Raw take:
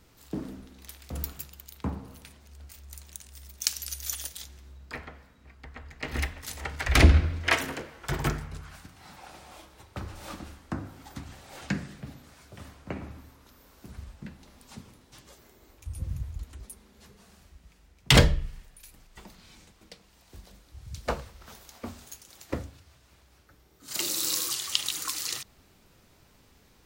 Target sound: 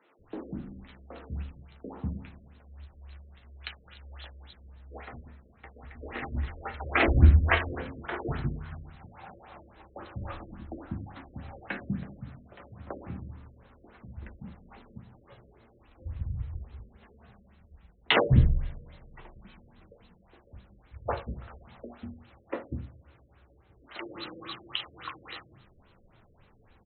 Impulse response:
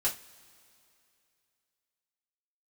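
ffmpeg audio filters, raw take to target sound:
-filter_complex "[0:a]acrossover=split=280|3500[a][b][c];[c]adelay=90[d];[a]adelay=190[e];[e][b][d]amix=inputs=3:normalize=0,asplit=2[f][g];[1:a]atrim=start_sample=2205,adelay=9[h];[g][h]afir=irnorm=-1:irlink=0,volume=-10dB[i];[f][i]amix=inputs=2:normalize=0,afftfilt=real='re*lt(b*sr/1024,590*pow(4300/590,0.5+0.5*sin(2*PI*3.6*pts/sr)))':imag='im*lt(b*sr/1024,590*pow(4300/590,0.5+0.5*sin(2*PI*3.6*pts/sr)))':win_size=1024:overlap=0.75"

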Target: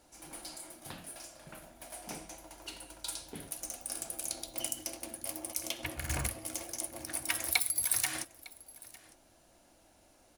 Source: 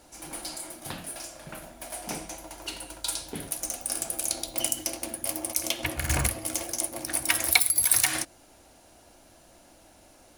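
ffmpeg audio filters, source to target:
-af "aecho=1:1:905:0.0841,volume=-8.5dB"

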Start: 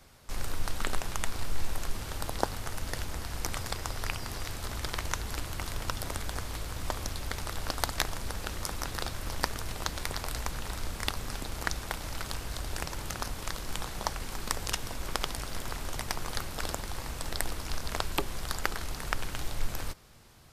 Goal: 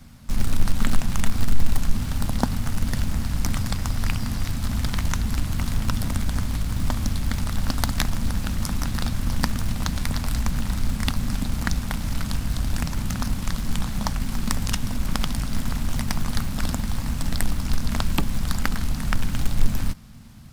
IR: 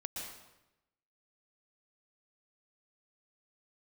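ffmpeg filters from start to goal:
-filter_complex "[0:a]lowshelf=f=300:t=q:w=3:g=9,asplit=2[a][b];[b]acrusher=bits=2:mode=log:mix=0:aa=0.000001,volume=-10dB[c];[a][c]amix=inputs=2:normalize=0,volume=1dB"

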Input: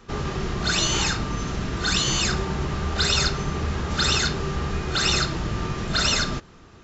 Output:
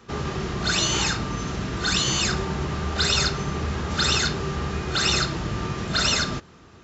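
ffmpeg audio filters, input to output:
-af "highpass=58"

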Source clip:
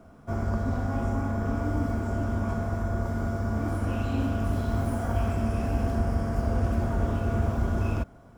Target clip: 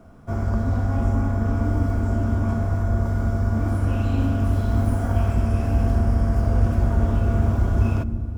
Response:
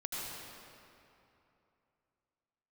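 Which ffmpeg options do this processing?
-filter_complex "[0:a]asplit=2[a][b];[b]lowshelf=f=330:g=11[c];[1:a]atrim=start_sample=2205,lowshelf=f=460:g=11.5[d];[c][d]afir=irnorm=-1:irlink=0,volume=-22.5dB[e];[a][e]amix=inputs=2:normalize=0,volume=1.5dB"

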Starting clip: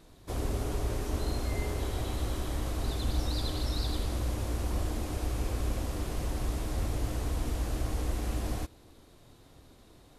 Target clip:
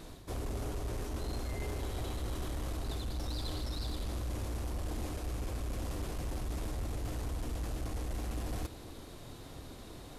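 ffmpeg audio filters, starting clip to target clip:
-af "areverse,acompressor=threshold=-41dB:ratio=5,areverse,asoftclip=type=tanh:threshold=-39dB,volume=8.5dB"

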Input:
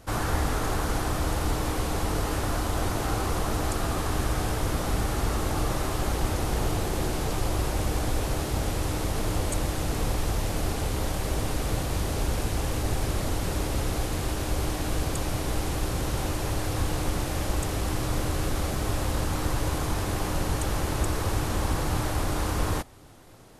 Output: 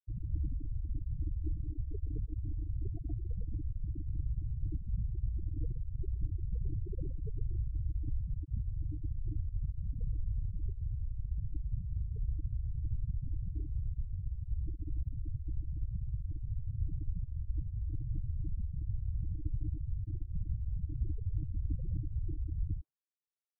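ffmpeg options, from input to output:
-filter_complex "[0:a]aemphasis=mode=reproduction:type=cd,afftfilt=real='re*gte(hypot(re,im),0.224)':imag='im*gte(hypot(re,im),0.224)':win_size=1024:overlap=0.75,acrossover=split=690[a][b];[b]adelay=120[c];[a][c]amix=inputs=2:normalize=0,volume=-6.5dB"

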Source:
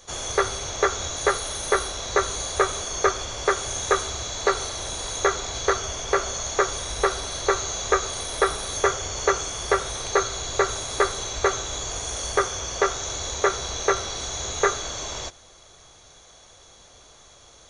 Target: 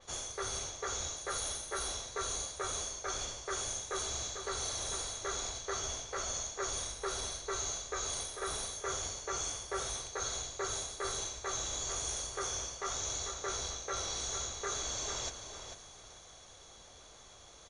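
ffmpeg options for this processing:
-filter_complex "[0:a]areverse,acompressor=threshold=-32dB:ratio=6,areverse,asplit=2[a][b];[b]adelay=445,lowpass=f=4.8k:p=1,volume=-7dB,asplit=2[c][d];[d]adelay=445,lowpass=f=4.8k:p=1,volume=0.29,asplit=2[e][f];[f]adelay=445,lowpass=f=4.8k:p=1,volume=0.29,asplit=2[g][h];[h]adelay=445,lowpass=f=4.8k:p=1,volume=0.29[i];[a][c][e][g][i]amix=inputs=5:normalize=0,adynamicequalizer=threshold=0.00355:dfrequency=4400:dqfactor=0.7:tfrequency=4400:tqfactor=0.7:attack=5:release=100:ratio=0.375:range=3:mode=boostabove:tftype=highshelf,volume=-5.5dB"

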